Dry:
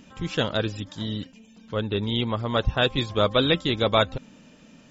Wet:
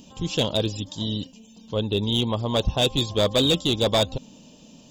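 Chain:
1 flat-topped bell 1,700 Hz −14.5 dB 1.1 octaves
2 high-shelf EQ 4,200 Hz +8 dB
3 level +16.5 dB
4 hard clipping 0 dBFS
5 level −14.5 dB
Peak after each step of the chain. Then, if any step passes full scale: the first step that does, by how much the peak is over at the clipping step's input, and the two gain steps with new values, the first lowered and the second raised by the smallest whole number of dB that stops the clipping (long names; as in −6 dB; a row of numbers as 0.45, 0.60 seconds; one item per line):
−8.5, −7.5, +9.0, 0.0, −14.5 dBFS
step 3, 9.0 dB
step 3 +7.5 dB, step 5 −5.5 dB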